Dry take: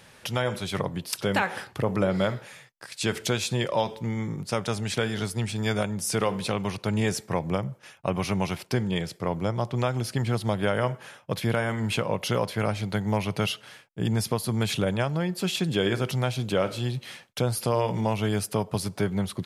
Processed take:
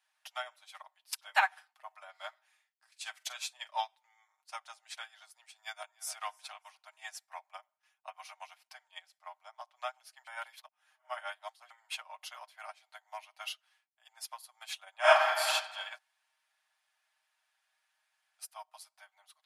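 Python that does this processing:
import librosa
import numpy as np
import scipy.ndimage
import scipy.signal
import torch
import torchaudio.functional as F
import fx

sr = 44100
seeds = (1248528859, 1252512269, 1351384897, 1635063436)

y = fx.doubler(x, sr, ms=44.0, db=-11.0, at=(2.48, 3.71))
y = fx.echo_throw(y, sr, start_s=5.61, length_s=0.57, ms=300, feedback_pct=30, wet_db=-12.0)
y = fx.reverb_throw(y, sr, start_s=14.99, length_s=0.49, rt60_s=2.1, drr_db=-11.5)
y = fx.edit(y, sr, fx.reverse_span(start_s=10.27, length_s=1.43),
    fx.room_tone_fill(start_s=15.98, length_s=2.41), tone=tone)
y = scipy.signal.sosfilt(scipy.signal.butter(12, 670.0, 'highpass', fs=sr, output='sos'), y)
y = y + 0.65 * np.pad(y, (int(6.5 * sr / 1000.0), 0))[:len(y)]
y = fx.upward_expand(y, sr, threshold_db=-38.0, expansion=2.5)
y = y * librosa.db_to_amplitude(2.0)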